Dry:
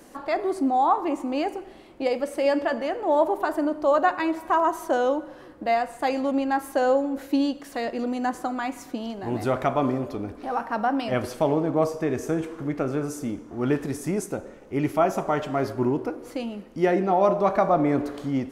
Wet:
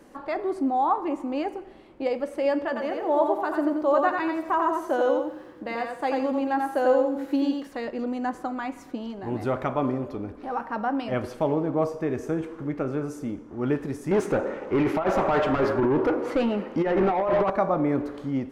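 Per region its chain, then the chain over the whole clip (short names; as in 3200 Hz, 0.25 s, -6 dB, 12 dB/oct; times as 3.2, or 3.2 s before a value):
2.67–7.67 HPF 97 Hz 6 dB/oct + echo 91 ms -4 dB + lo-fi delay 85 ms, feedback 35%, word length 8-bit, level -12 dB
14.11–17.5 negative-ratio compressor -24 dBFS, ratio -0.5 + overdrive pedal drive 24 dB, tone 1600 Hz, clips at -11.5 dBFS
whole clip: high shelf 4000 Hz -10.5 dB; notch 690 Hz, Q 12; gain -1.5 dB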